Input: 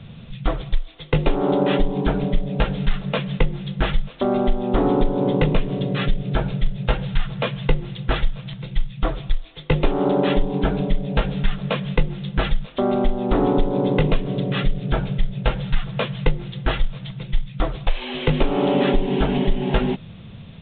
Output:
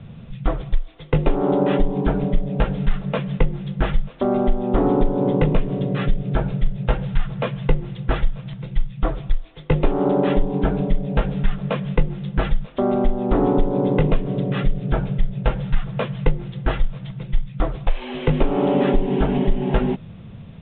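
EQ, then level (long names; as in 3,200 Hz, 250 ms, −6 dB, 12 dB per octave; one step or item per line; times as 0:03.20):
low-pass filter 2,000 Hz 6 dB per octave
high-frequency loss of the air 130 metres
+1.0 dB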